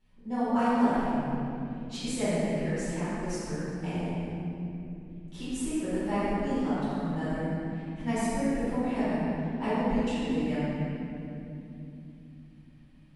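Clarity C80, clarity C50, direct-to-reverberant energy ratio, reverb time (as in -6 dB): -3.5 dB, -6.0 dB, -15.0 dB, 2.9 s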